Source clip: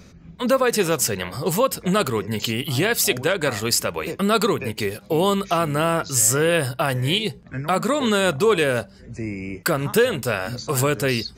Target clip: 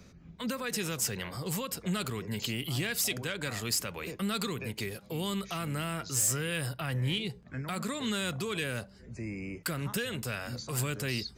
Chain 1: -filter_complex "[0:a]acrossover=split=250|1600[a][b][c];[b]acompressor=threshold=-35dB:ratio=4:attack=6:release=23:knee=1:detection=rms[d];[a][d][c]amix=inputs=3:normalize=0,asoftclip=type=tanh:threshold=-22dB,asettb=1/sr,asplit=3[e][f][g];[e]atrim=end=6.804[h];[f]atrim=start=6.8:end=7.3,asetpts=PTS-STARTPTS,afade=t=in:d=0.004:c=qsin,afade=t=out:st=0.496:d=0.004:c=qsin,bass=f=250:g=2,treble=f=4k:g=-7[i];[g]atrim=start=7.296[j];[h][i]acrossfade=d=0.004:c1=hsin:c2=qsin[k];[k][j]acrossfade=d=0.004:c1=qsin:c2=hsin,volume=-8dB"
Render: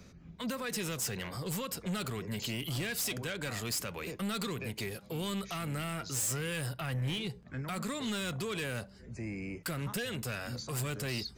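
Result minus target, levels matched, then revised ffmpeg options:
soft clip: distortion +10 dB
-filter_complex "[0:a]acrossover=split=250|1600[a][b][c];[b]acompressor=threshold=-35dB:ratio=4:attack=6:release=23:knee=1:detection=rms[d];[a][d][c]amix=inputs=3:normalize=0,asoftclip=type=tanh:threshold=-12.5dB,asettb=1/sr,asplit=3[e][f][g];[e]atrim=end=6.804[h];[f]atrim=start=6.8:end=7.3,asetpts=PTS-STARTPTS,afade=t=in:d=0.004:c=qsin,afade=t=out:st=0.496:d=0.004:c=qsin,bass=f=250:g=2,treble=f=4k:g=-7[i];[g]atrim=start=7.296[j];[h][i]acrossfade=d=0.004:c1=hsin:c2=qsin[k];[k][j]acrossfade=d=0.004:c1=qsin:c2=hsin,volume=-8dB"

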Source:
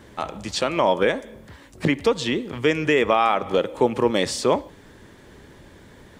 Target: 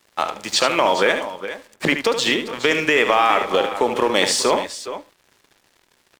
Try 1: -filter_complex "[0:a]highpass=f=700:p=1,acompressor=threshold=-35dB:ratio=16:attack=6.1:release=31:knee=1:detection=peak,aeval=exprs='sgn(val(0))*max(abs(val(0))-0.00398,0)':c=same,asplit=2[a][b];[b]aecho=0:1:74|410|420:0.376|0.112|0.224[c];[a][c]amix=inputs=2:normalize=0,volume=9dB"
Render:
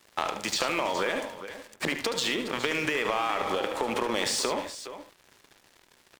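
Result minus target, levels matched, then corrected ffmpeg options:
compressor: peak gain reduction +11.5 dB
-filter_complex "[0:a]highpass=f=700:p=1,acompressor=threshold=-23dB:ratio=16:attack=6.1:release=31:knee=1:detection=peak,aeval=exprs='sgn(val(0))*max(abs(val(0))-0.00398,0)':c=same,asplit=2[a][b];[b]aecho=0:1:74|410|420:0.376|0.112|0.224[c];[a][c]amix=inputs=2:normalize=0,volume=9dB"

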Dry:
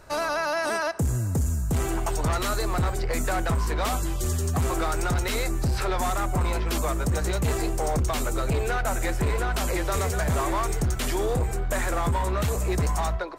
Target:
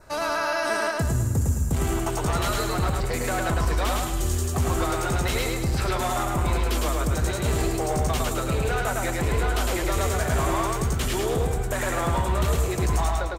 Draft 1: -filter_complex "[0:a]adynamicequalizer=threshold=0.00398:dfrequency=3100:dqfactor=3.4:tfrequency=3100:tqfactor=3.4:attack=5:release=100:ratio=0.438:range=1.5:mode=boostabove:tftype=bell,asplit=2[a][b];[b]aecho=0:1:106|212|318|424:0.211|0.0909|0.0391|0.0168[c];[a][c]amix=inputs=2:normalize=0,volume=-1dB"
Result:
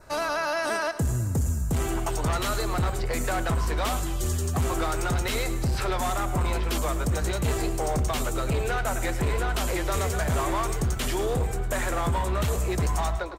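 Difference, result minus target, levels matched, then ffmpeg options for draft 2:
echo-to-direct -11.5 dB
-filter_complex "[0:a]adynamicequalizer=threshold=0.00398:dfrequency=3100:dqfactor=3.4:tfrequency=3100:tqfactor=3.4:attack=5:release=100:ratio=0.438:range=1.5:mode=boostabove:tftype=bell,asplit=2[a][b];[b]aecho=0:1:106|212|318|424|530|636:0.794|0.342|0.147|0.0632|0.0272|0.0117[c];[a][c]amix=inputs=2:normalize=0,volume=-1dB"

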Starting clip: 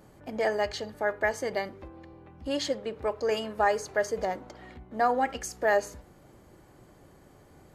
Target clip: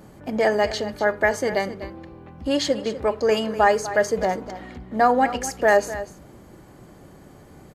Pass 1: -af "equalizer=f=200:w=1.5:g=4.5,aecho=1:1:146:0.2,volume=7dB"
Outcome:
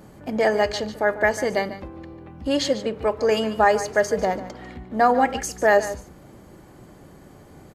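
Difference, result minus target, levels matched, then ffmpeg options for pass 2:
echo 0.102 s early
-af "equalizer=f=200:w=1.5:g=4.5,aecho=1:1:248:0.2,volume=7dB"

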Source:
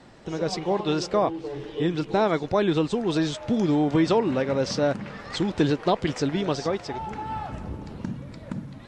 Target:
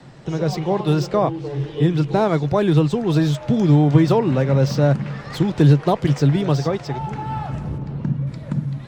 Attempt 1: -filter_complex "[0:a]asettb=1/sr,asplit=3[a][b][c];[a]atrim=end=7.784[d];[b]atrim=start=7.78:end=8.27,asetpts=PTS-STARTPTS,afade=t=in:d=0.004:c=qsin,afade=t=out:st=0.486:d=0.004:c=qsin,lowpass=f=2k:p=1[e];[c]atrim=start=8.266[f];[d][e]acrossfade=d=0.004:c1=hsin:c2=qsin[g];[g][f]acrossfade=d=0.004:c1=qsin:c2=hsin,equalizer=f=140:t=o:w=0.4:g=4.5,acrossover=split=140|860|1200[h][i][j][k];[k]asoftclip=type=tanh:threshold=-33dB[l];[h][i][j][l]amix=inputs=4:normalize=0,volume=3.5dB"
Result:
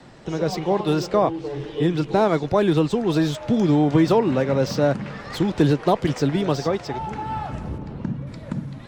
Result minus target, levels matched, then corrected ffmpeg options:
125 Hz band -5.0 dB
-filter_complex "[0:a]asettb=1/sr,asplit=3[a][b][c];[a]atrim=end=7.784[d];[b]atrim=start=7.78:end=8.27,asetpts=PTS-STARTPTS,afade=t=in:d=0.004:c=qsin,afade=t=out:st=0.486:d=0.004:c=qsin,lowpass=f=2k:p=1[e];[c]atrim=start=8.266[f];[d][e]acrossfade=d=0.004:c1=hsin:c2=qsin[g];[g][f]acrossfade=d=0.004:c1=qsin:c2=hsin,equalizer=f=140:t=o:w=0.4:g=15,acrossover=split=140|860|1200[h][i][j][k];[k]asoftclip=type=tanh:threshold=-33dB[l];[h][i][j][l]amix=inputs=4:normalize=0,volume=3.5dB"

